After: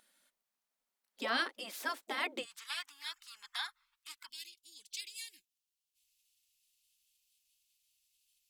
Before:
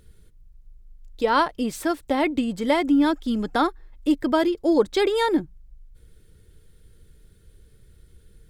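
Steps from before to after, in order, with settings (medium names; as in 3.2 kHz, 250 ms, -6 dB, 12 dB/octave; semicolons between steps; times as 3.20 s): elliptic high-pass 270 Hz, stop band 50 dB, from 2.43 s 1.1 kHz, from 4.27 s 2.7 kHz; spectral gate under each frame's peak -10 dB weak; trim -3 dB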